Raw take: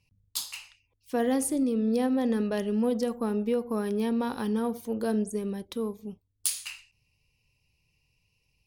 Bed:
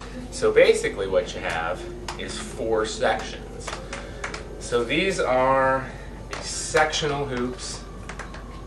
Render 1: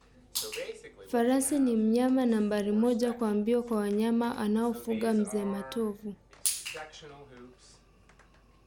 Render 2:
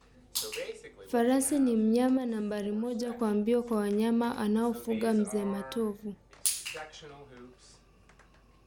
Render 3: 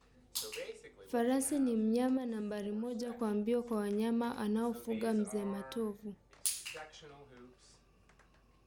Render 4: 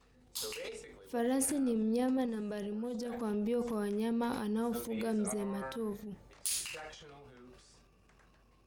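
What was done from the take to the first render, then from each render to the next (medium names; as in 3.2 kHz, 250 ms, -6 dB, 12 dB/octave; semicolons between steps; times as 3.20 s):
add bed -23.5 dB
2.17–3.21 s: compression, threshold -29 dBFS
trim -6 dB
transient shaper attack -3 dB, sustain +9 dB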